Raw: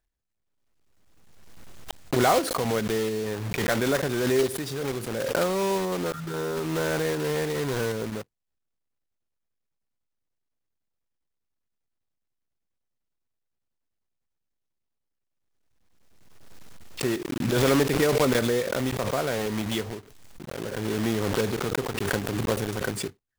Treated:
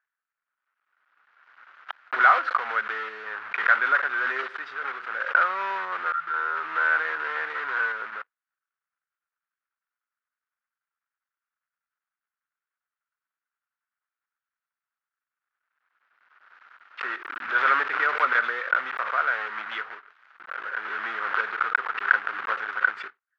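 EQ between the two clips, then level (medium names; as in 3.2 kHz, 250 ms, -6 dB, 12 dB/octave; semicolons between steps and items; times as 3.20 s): resonant high-pass 1.4 kHz, resonance Q 4.3; low-pass 2.1 kHz 12 dB/octave; distance through air 140 m; +3.5 dB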